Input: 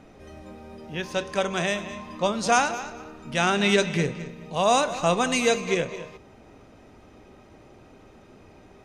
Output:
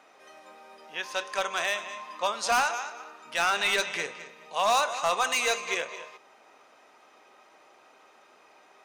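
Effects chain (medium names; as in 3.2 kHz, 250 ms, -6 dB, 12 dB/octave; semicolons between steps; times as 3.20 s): high-pass 770 Hz 12 dB/octave; peaking EQ 1.1 kHz +3 dB 0.8 oct; overload inside the chain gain 18.5 dB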